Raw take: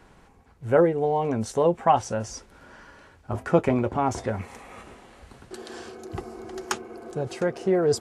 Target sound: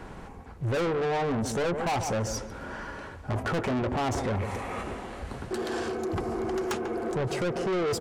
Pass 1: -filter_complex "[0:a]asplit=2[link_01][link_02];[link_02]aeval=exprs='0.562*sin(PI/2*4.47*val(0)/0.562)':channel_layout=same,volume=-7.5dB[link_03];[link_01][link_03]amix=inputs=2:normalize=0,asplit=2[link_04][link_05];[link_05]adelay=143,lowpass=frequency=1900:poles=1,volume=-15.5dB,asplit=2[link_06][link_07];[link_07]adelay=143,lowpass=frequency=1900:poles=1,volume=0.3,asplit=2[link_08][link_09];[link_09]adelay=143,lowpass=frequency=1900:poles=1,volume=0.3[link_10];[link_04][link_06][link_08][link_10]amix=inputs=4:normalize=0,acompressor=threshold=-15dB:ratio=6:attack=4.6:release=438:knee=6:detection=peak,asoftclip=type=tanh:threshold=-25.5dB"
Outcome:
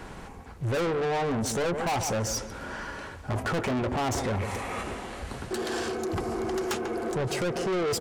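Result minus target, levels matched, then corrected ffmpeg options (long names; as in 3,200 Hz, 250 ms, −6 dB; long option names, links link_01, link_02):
4,000 Hz band +2.5 dB
-filter_complex "[0:a]asplit=2[link_01][link_02];[link_02]aeval=exprs='0.562*sin(PI/2*4.47*val(0)/0.562)':channel_layout=same,volume=-7.5dB[link_03];[link_01][link_03]amix=inputs=2:normalize=0,asplit=2[link_04][link_05];[link_05]adelay=143,lowpass=frequency=1900:poles=1,volume=-15.5dB,asplit=2[link_06][link_07];[link_07]adelay=143,lowpass=frequency=1900:poles=1,volume=0.3,asplit=2[link_08][link_09];[link_09]adelay=143,lowpass=frequency=1900:poles=1,volume=0.3[link_10];[link_04][link_06][link_08][link_10]amix=inputs=4:normalize=0,acompressor=threshold=-15dB:ratio=6:attack=4.6:release=438:knee=6:detection=peak,highshelf=frequency=2200:gain=-7,asoftclip=type=tanh:threshold=-25.5dB"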